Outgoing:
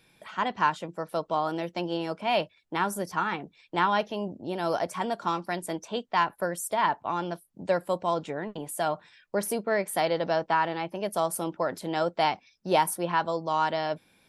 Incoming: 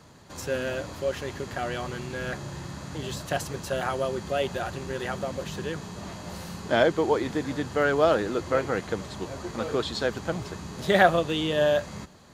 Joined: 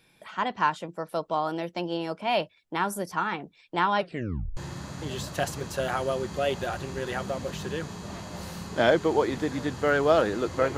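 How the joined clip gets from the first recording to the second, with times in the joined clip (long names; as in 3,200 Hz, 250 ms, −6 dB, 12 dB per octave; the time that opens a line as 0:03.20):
outgoing
0:03.97: tape stop 0.60 s
0:04.57: continue with incoming from 0:02.50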